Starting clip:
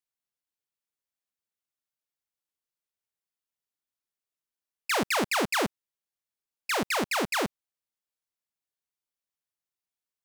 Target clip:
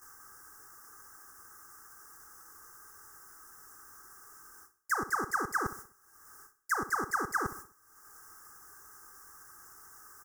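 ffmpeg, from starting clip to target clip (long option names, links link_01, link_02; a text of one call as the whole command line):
ffmpeg -i in.wav -filter_complex "[0:a]aeval=exprs='val(0)+0.5*0.00447*sgn(val(0))':channel_layout=same,areverse,acompressor=threshold=-38dB:ratio=16,areverse,agate=range=-50dB:threshold=-53dB:ratio=16:detection=peak,equalizer=frequency=1300:width_type=o:width=0.74:gain=13,acompressor=mode=upward:threshold=-51dB:ratio=2.5,asuperstop=centerf=3100:order=12:qfactor=0.89,equalizer=frequency=630:width_type=o:width=0.44:gain=-13,aecho=1:1:2.5:0.54,asplit=2[link_01][link_02];[link_02]aecho=0:1:64|128|192|256:0.188|0.0772|0.0317|0.013[link_03];[link_01][link_03]amix=inputs=2:normalize=0,alimiter=level_in=5dB:limit=-24dB:level=0:latency=1:release=495,volume=-5dB,volume=9dB" out.wav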